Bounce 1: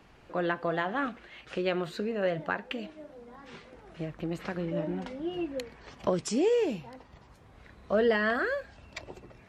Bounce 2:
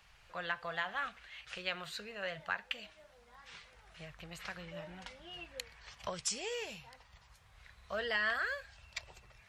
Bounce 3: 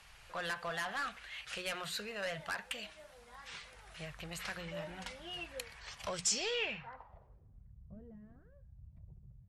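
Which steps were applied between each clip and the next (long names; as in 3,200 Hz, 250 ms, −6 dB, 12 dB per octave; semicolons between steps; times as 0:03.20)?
guitar amp tone stack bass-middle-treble 10-0-10; level +2.5 dB
soft clipping −37 dBFS, distortion −7 dB; mains-hum notches 60/120/180 Hz; low-pass filter sweep 11,000 Hz → 150 Hz, 0:06.14–0:07.70; level +4.5 dB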